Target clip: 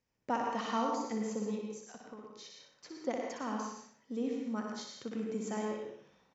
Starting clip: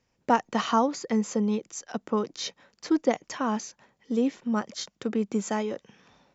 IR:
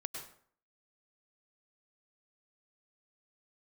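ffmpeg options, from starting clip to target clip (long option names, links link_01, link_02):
-filter_complex "[0:a]asplit=3[link_01][link_02][link_03];[link_01]afade=type=out:start_time=1.65:duration=0.02[link_04];[link_02]acompressor=threshold=-38dB:ratio=4,afade=type=in:start_time=1.65:duration=0.02,afade=type=out:start_time=2.98:duration=0.02[link_05];[link_03]afade=type=in:start_time=2.98:duration=0.02[link_06];[link_04][link_05][link_06]amix=inputs=3:normalize=0,aecho=1:1:61|122|183|244:0.501|0.175|0.0614|0.0215[link_07];[1:a]atrim=start_sample=2205[link_08];[link_07][link_08]afir=irnorm=-1:irlink=0,volume=-9dB"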